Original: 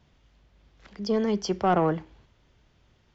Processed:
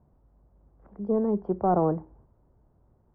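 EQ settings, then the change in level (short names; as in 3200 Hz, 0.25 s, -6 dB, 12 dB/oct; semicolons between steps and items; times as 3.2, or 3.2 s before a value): LPF 1000 Hz 24 dB/oct; 0.0 dB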